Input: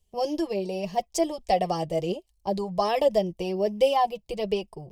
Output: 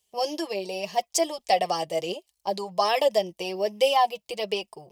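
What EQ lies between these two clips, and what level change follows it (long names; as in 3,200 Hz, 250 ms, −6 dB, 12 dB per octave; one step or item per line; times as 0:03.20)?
high-pass filter 1,200 Hz 6 dB per octave
+7.0 dB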